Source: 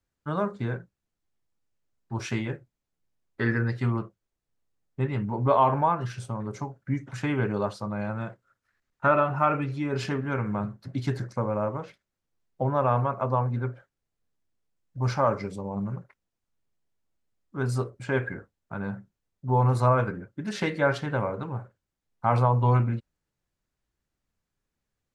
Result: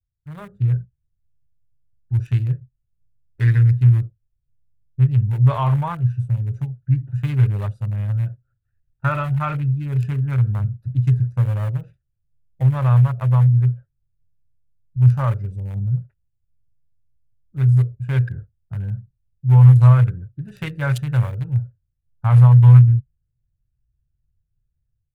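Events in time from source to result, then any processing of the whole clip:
20.91–21.59 s: treble shelf 3.3 kHz +9.5 dB
whole clip: local Wiener filter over 41 samples; FFT filter 130 Hz 0 dB, 220 Hz -24 dB, 740 Hz -21 dB, 1.5 kHz -14 dB, 2.9 kHz -10 dB, 5.3 kHz -13 dB, 11 kHz +5 dB; level rider gain up to 11 dB; trim +4 dB

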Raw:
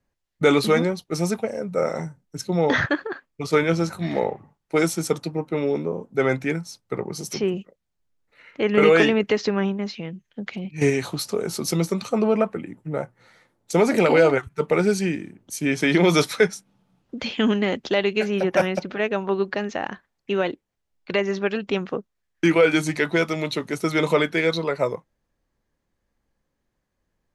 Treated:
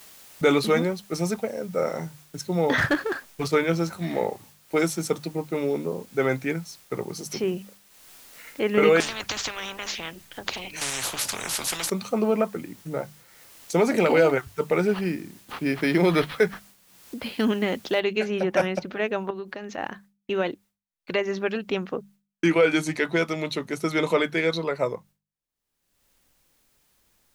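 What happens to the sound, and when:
2.78–3.48 s: power-law waveshaper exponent 0.7
9.00–11.90 s: spectrum-flattening compressor 10:1
14.87–17.45 s: decimation joined by straight lines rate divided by 6×
18.00 s: noise floor step -51 dB -70 dB
19.30–19.78 s: compression, threshold -28 dBFS
whole clip: expander -43 dBFS; hum notches 50/100/150/200 Hz; upward compressor, threshold -33 dBFS; trim -2.5 dB

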